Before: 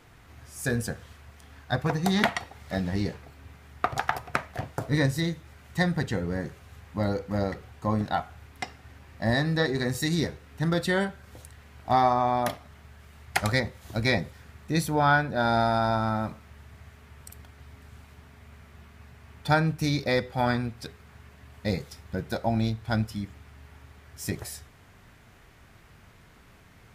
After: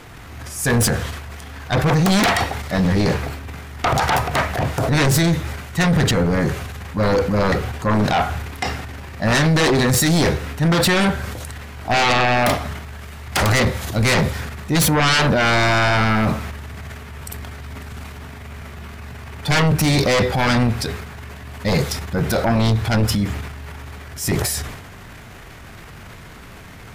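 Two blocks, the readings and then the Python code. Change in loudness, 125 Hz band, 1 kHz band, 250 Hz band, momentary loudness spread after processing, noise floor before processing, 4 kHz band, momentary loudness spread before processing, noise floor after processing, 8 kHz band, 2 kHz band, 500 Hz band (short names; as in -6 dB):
+9.5 dB, +10.5 dB, +7.0 dB, +9.5 dB, 19 LU, -54 dBFS, +13.0 dB, 15 LU, -39 dBFS, +16.0 dB, +10.0 dB, +9.0 dB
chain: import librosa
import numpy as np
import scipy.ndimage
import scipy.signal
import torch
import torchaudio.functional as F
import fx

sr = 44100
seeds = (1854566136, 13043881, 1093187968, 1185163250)

y = fx.transient(x, sr, attack_db=-5, sustain_db=8)
y = fx.fold_sine(y, sr, drive_db=17, ceiling_db=-6.5)
y = y * 10.0 ** (-6.0 / 20.0)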